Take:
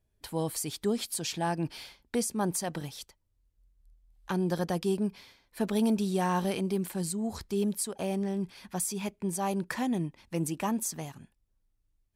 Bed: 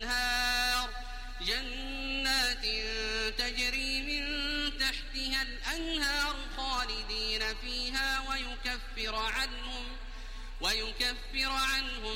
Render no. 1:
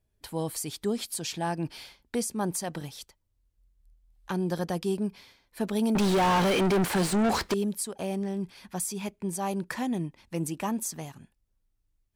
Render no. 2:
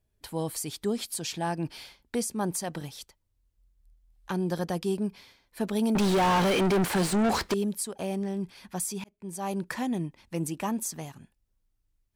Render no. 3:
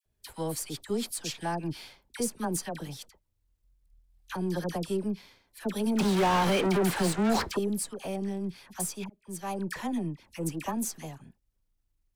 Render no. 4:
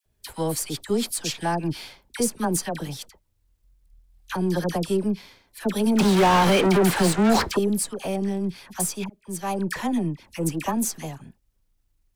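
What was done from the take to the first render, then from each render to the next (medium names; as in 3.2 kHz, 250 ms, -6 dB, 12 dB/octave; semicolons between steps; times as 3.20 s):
5.95–7.54 s: overdrive pedal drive 36 dB, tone 2.3 kHz, clips at -16.5 dBFS
9.04–9.56 s: fade in
partial rectifier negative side -3 dB; phase dispersion lows, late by 58 ms, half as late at 1.2 kHz
trim +7 dB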